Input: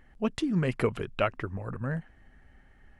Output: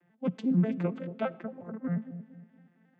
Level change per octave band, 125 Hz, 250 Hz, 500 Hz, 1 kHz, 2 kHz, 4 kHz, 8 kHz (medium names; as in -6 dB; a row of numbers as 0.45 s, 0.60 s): -1.0 dB, +2.0 dB, -4.5 dB, -6.5 dB, -10.0 dB, -13.0 dB, no reading